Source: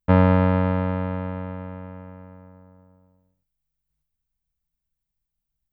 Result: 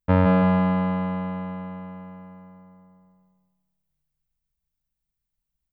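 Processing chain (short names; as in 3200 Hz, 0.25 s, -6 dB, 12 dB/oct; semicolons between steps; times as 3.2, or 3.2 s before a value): feedback echo 0.167 s, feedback 39%, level -3 dB; gain -2.5 dB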